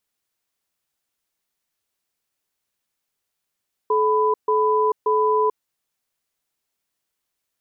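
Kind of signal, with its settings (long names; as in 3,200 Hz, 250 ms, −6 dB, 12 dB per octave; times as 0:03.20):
tone pair in a cadence 430 Hz, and 997 Hz, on 0.44 s, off 0.14 s, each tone −18.5 dBFS 1.65 s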